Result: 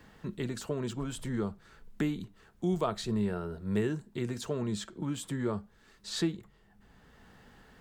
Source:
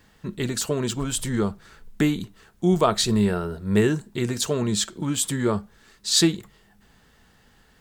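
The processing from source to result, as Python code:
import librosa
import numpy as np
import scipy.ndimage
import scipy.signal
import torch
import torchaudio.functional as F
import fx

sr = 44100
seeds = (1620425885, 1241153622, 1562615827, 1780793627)

y = fx.high_shelf(x, sr, hz=2800.0, db=-9.0)
y = fx.band_squash(y, sr, depth_pct=40)
y = F.gain(torch.from_numpy(y), -9.0).numpy()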